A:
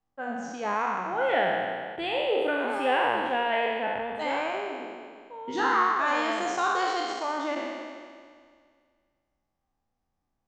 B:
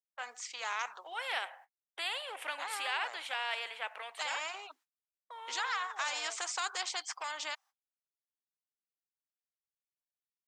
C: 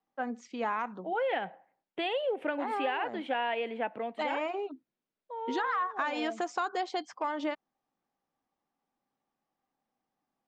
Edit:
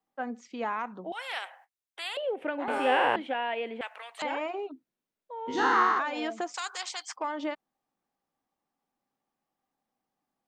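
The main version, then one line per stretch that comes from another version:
C
1.12–2.17 from B
2.68–3.16 from A
3.81–4.22 from B
5.47–5.99 from A
6.54–7.16 from B

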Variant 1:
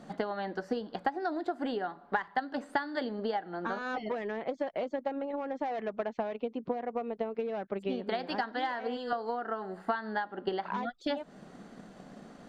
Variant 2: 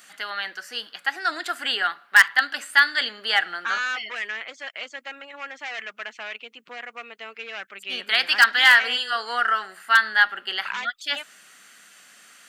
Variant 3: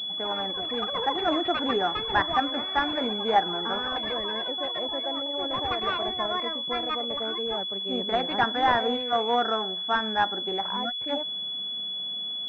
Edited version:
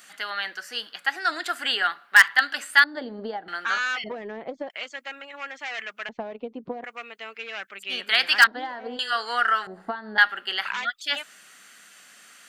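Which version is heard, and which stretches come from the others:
2
2.84–3.48 from 1
4.04–4.7 from 1
6.09–6.84 from 1
8.47–8.99 from 1
9.67–10.18 from 1
not used: 3

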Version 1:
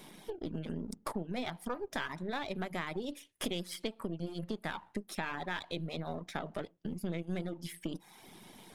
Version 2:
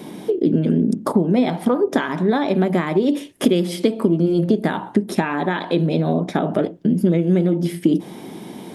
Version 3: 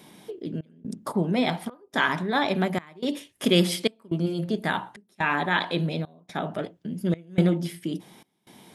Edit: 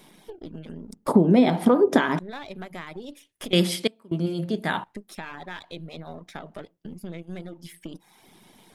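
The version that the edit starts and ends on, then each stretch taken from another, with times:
1
1.08–2.19 from 2
3.53–4.84 from 3

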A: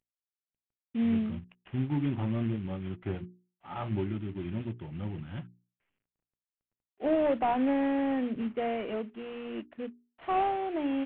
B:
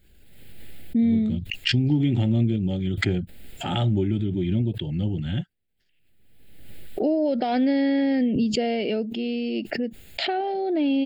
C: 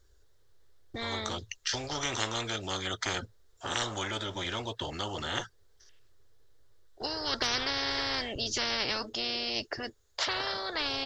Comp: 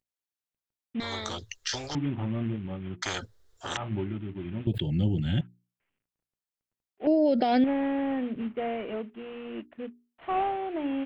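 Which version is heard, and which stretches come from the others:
A
1–1.95 from C
3.02–3.77 from C
4.67–5.41 from B
7.07–7.64 from B

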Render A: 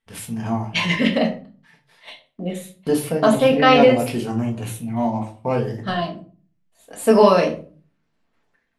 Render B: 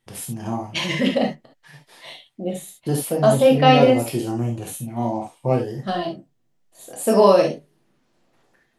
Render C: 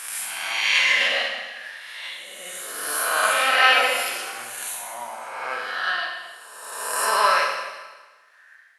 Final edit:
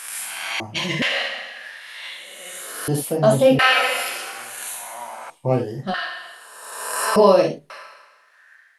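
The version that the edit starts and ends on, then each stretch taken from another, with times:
C
0.6–1.02 from B
2.88–3.59 from B
5.3–5.94 from B
7.16–7.7 from B
not used: A

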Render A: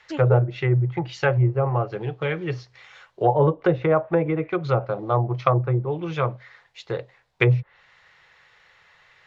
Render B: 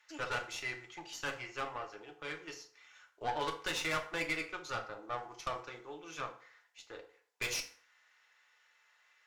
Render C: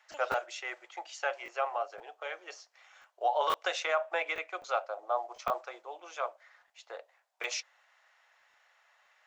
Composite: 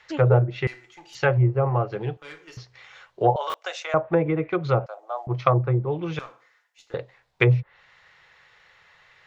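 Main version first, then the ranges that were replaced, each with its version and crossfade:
A
0.67–1.15 from B
2.17–2.57 from B
3.36–3.94 from C
4.86–5.27 from C
6.19–6.94 from B

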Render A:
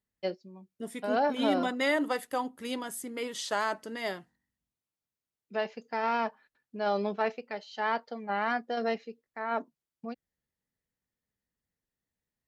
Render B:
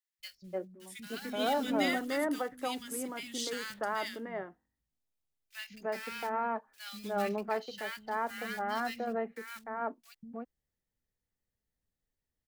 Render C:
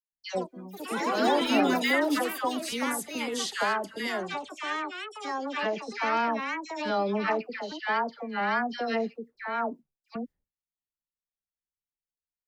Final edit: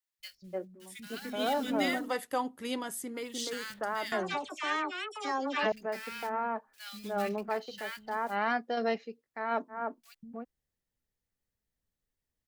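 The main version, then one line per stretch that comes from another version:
B
2.06–3.25 from A, crossfade 0.24 s
4.12–5.72 from C
8.32–9.73 from A, crossfade 0.10 s

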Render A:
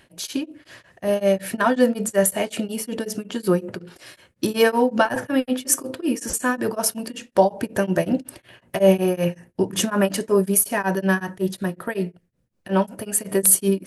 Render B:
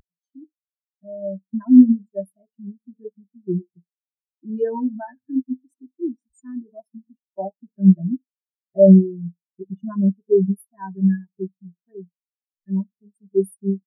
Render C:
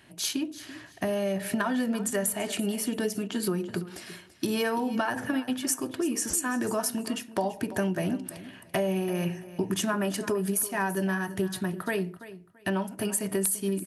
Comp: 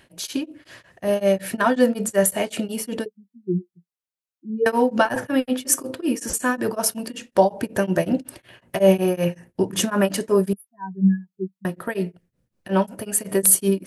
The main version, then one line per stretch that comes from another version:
A
3.06–4.66 from B
10.53–11.65 from B
not used: C

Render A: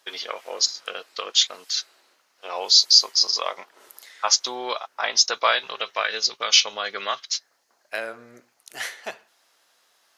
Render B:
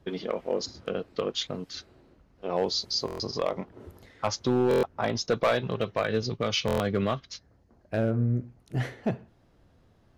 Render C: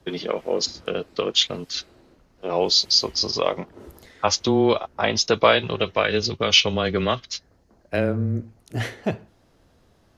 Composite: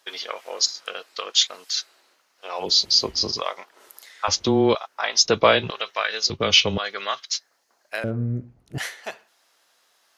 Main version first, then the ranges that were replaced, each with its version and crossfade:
A
2.66–3.37 from C, crossfade 0.16 s
4.28–4.75 from C
5.25–5.7 from C
6.3–6.78 from C
8.04–8.78 from B

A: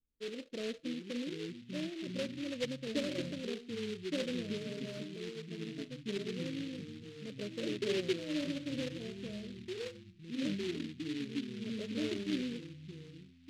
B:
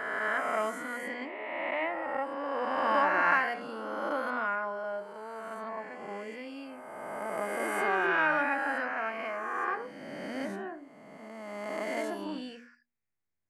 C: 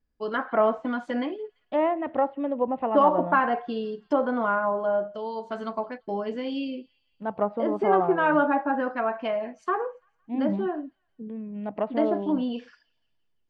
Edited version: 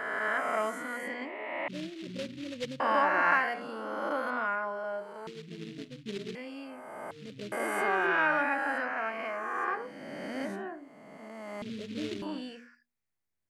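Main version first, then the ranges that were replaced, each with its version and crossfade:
B
1.68–2.8 from A
5.27–6.35 from A
7.11–7.52 from A
11.62–12.22 from A
not used: C

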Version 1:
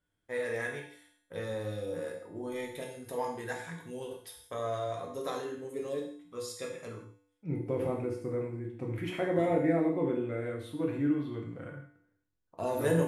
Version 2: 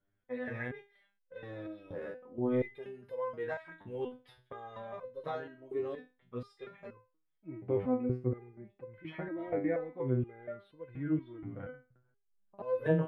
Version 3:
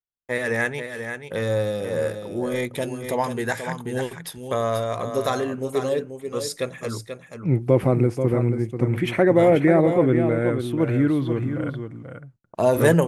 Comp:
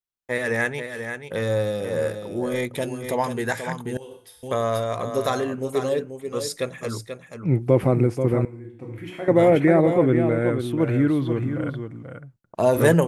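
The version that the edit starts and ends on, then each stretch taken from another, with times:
3
3.97–4.43 from 1
8.45–9.28 from 1
not used: 2

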